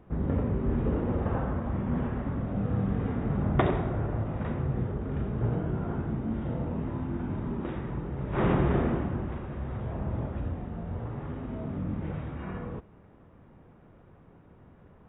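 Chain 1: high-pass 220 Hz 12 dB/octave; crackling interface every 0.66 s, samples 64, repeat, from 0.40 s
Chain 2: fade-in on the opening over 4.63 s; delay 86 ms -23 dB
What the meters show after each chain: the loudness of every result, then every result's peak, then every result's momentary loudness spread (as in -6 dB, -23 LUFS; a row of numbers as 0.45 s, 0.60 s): -35.0 LUFS, -32.5 LUFS; -10.5 dBFS, -12.5 dBFS; 12 LU, 12 LU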